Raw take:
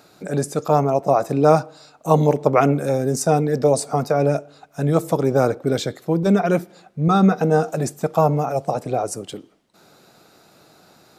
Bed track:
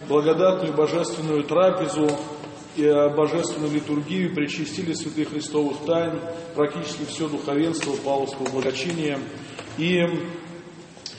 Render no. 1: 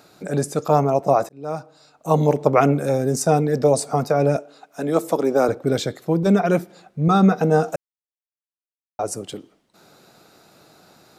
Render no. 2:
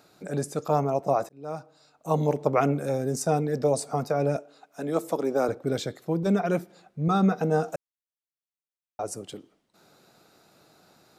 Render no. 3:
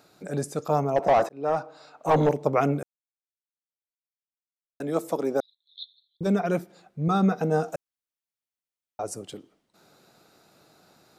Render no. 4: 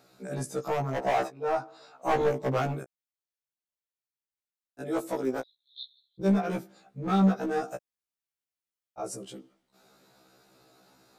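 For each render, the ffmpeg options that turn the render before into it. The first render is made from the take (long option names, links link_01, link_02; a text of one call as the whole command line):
ffmpeg -i in.wav -filter_complex "[0:a]asettb=1/sr,asplit=3[link_01][link_02][link_03];[link_01]atrim=end=4.364[link_04];[link_02]atrim=start=4.36:end=5.49,asetpts=PTS-STARTPTS,afade=type=in:duration=0.004:curve=qsin,afade=type=out:start_time=1.126:duration=0.004:curve=qsin,highpass=frequency=210:width=0.5412,highpass=frequency=210:width=1.3066[link_05];[link_03]atrim=start=5.486[link_06];[link_04][link_05]acrossfade=duration=0.004:curve1=hsin:curve2=qsin[link_07];[link_07][link_06]acrossfade=duration=0.004:curve1=qsin:curve2=hsin,asplit=4[link_08][link_09][link_10][link_11];[link_08]atrim=end=1.29,asetpts=PTS-STARTPTS,afade=type=out:start_time=1.286:duration=0.004:curve=hsin[link_12];[link_09]atrim=start=1.29:end=7.76,asetpts=PTS-STARTPTS,afade=type=in:duration=1.09,afade=type=out:start_time=6.466:duration=0.004:curve=hsin[link_13];[link_10]atrim=start=7.76:end=8.99,asetpts=PTS-STARTPTS,volume=0[link_14];[link_11]atrim=start=8.99,asetpts=PTS-STARTPTS,afade=type=in:duration=0.004:curve=hsin[link_15];[link_12][link_13][link_14][link_15]concat=n=4:v=0:a=1" out.wav
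ffmpeg -i in.wav -af "volume=-7dB" out.wav
ffmpeg -i in.wav -filter_complex "[0:a]asettb=1/sr,asplit=3[link_01][link_02][link_03];[link_01]atrim=end=0.964[link_04];[link_02]atrim=start=0.96:end=2.29,asetpts=PTS-STARTPTS,afade=type=in:duration=0.004:curve=qsin,afade=type=out:start_time=1.326:duration=0.004:curve=qsin,asplit=2[link_05][link_06];[link_06]highpass=frequency=720:poles=1,volume=22dB,asoftclip=type=tanh:threshold=-10dB[link_07];[link_05][link_07]amix=inputs=2:normalize=0,lowpass=frequency=1300:poles=1,volume=-6dB[link_08];[link_03]atrim=start=2.286[link_09];[link_04][link_08]acrossfade=duration=0.004:curve1=hsin:curve2=qsin[link_10];[link_10][link_09]acrossfade=duration=0.004:curve1=qsin:curve2=hsin,asettb=1/sr,asplit=3[link_11][link_12][link_13];[link_11]atrim=end=5.404[link_14];[link_12]atrim=start=5.4:end=6.21,asetpts=PTS-STARTPTS,afade=type=in:duration=0.004:curve=qsin,afade=type=out:start_time=0.806:duration=0.004:curve=qsin,asuperpass=centerf=3800:order=8:qfactor=4.4[link_15];[link_13]atrim=start=6.206[link_16];[link_14][link_15]acrossfade=duration=0.004:curve1=hsin:curve2=qsin[link_17];[link_17][link_16]acrossfade=duration=0.004:curve1=qsin:curve2=hsin,asplit=3[link_18][link_19][link_20];[link_18]atrim=end=2.83,asetpts=PTS-STARTPTS,afade=type=out:start_time=2.826:duration=0.004:curve=hsin[link_21];[link_19]atrim=start=2.83:end=4.8,asetpts=PTS-STARTPTS,volume=0[link_22];[link_20]atrim=start=4.8,asetpts=PTS-STARTPTS,afade=type=in:duration=0.004:curve=hsin[link_23];[link_21][link_22][link_23]concat=n=3:v=0:a=1" out.wav
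ffmpeg -i in.wav -af "asoftclip=type=hard:threshold=-19.5dB,afftfilt=real='re*1.73*eq(mod(b,3),0)':imag='im*1.73*eq(mod(b,3),0)':win_size=2048:overlap=0.75" out.wav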